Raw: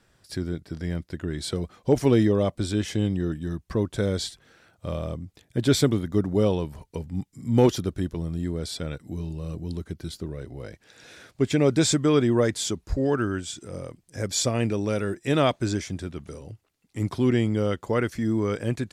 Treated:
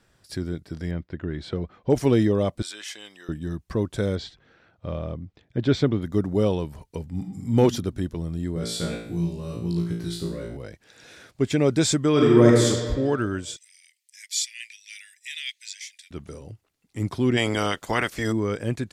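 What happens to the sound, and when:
0:00.91–0:01.90: low-pass filter 2,800 Hz
0:02.62–0:03.29: high-pass filter 1,200 Hz
0:04.15–0:06.02: high-frequency loss of the air 190 metres
0:07.10–0:07.53: thrown reverb, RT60 0.97 s, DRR 2 dB
0:08.54–0:10.57: flutter between parallel walls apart 3 metres, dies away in 0.57 s
0:12.11–0:12.67: thrown reverb, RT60 1.6 s, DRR −3 dB
0:13.56–0:16.11: Butterworth high-pass 1,900 Hz 72 dB per octave
0:17.36–0:18.31: ceiling on every frequency bin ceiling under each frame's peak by 21 dB

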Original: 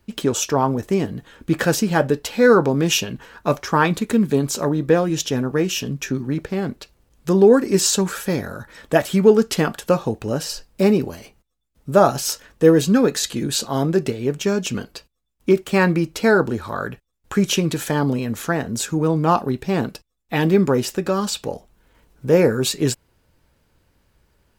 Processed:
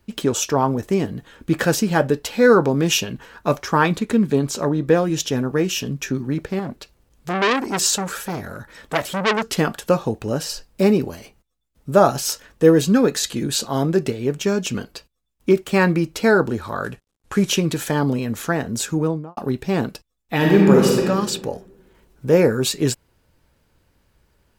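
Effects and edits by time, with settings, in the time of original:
0:03.96–0:04.87: high-shelf EQ 8,900 Hz −8.5 dB
0:06.59–0:09.58: saturating transformer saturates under 2,700 Hz
0:16.84–0:17.49: variable-slope delta modulation 64 kbit/s
0:18.95–0:19.37: fade out and dull
0:20.36–0:21.05: thrown reverb, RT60 1.3 s, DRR −2 dB

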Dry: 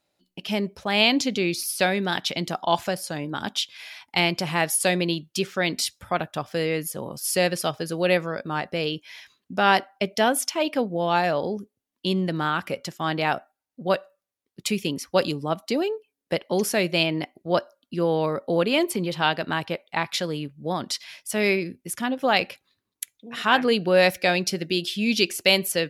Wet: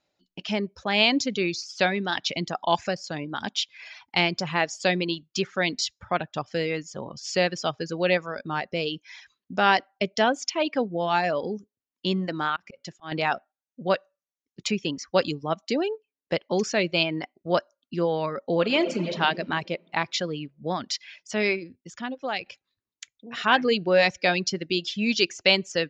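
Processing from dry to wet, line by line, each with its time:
0:12.56–0:13.12: volume swells 281 ms
0:18.53–0:19.17: thrown reverb, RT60 2.3 s, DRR 4.5 dB
0:21.31–0:22.46: fade out, to −10 dB
whole clip: Chebyshev low-pass filter 7,000 Hz, order 6; reverb reduction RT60 0.74 s

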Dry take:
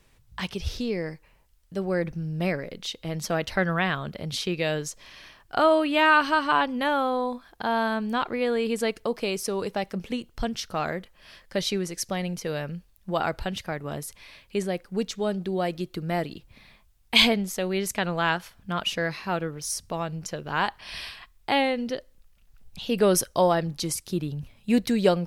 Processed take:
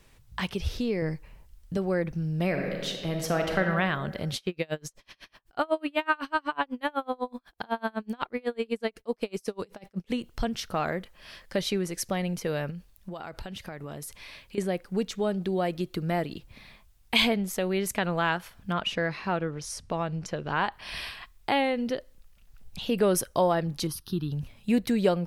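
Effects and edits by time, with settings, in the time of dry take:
0:01.02–0:01.77: low-shelf EQ 240 Hz +10 dB
0:02.46–0:03.62: thrown reverb, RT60 1.5 s, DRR 3 dB
0:04.36–0:10.10: tremolo with a sine in dB 8 Hz, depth 35 dB
0:12.70–0:14.58: downward compressor 20 to 1, threshold −36 dBFS
0:18.73–0:20.72: high-frequency loss of the air 62 metres
0:23.87–0:24.32: phaser with its sweep stopped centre 2,200 Hz, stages 6
whole clip: dynamic equaliser 5,400 Hz, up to −5 dB, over −46 dBFS, Q 0.89; downward compressor 1.5 to 1, threshold −31 dBFS; level +2.5 dB

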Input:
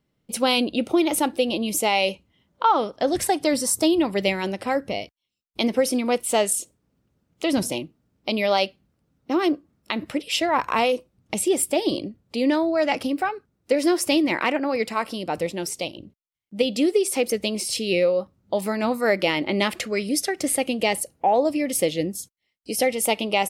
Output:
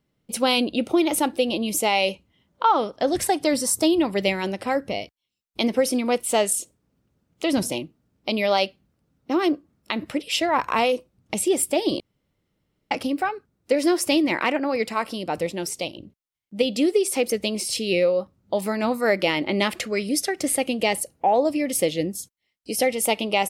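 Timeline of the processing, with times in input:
0:12.00–0:12.91: fill with room tone

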